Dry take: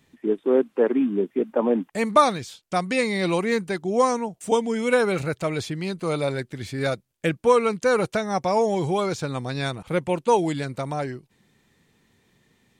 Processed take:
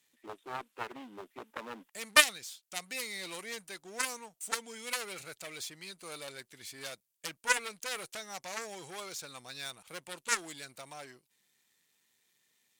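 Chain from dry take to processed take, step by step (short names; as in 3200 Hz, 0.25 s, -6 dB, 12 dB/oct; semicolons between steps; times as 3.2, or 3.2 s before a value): half-wave gain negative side -7 dB; added harmonics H 2 -11 dB, 3 -7 dB, 7 -36 dB, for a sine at -4.5 dBFS; tilt +4.5 dB/oct; gain -5.5 dB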